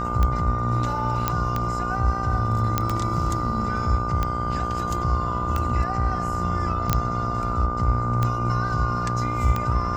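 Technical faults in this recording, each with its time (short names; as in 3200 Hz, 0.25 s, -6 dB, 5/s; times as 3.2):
buzz 60 Hz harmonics 25 -29 dBFS
tick 45 rpm -11 dBFS
tone 1200 Hz -27 dBFS
1.28 pop -7 dBFS
2.78 pop -6 dBFS
6.93 pop -4 dBFS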